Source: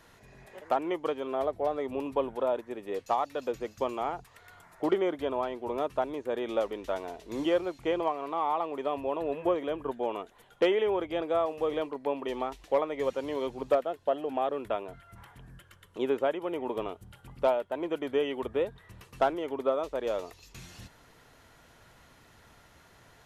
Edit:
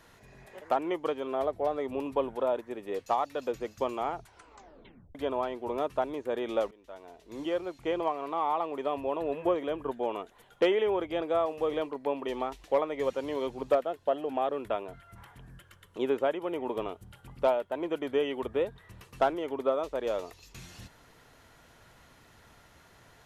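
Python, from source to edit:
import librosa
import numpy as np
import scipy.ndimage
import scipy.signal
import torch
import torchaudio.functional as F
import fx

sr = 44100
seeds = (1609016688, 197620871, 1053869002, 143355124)

y = fx.edit(x, sr, fx.tape_stop(start_s=4.14, length_s=1.01),
    fx.fade_in_from(start_s=6.71, length_s=1.46, floor_db=-23.5), tone=tone)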